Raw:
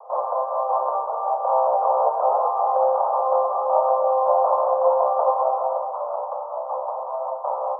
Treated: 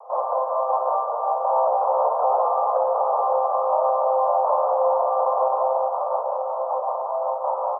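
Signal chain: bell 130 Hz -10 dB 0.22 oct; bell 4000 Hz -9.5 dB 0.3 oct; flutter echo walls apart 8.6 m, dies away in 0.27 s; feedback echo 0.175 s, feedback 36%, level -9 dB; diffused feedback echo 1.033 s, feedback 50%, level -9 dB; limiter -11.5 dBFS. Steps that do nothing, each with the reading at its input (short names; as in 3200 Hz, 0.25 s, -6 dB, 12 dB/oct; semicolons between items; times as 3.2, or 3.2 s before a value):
bell 130 Hz: input band starts at 450 Hz; bell 4000 Hz: input band ends at 1300 Hz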